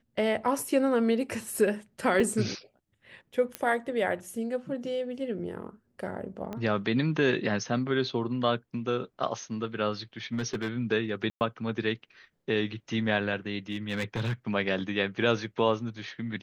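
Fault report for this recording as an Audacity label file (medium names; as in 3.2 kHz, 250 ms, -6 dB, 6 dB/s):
2.200000	2.200000	dropout 2.6 ms
3.550000	3.550000	pop -15 dBFS
6.530000	6.530000	pop -23 dBFS
10.330000	10.690000	clipped -25.5 dBFS
11.300000	11.410000	dropout 109 ms
13.710000	14.340000	clipped -26 dBFS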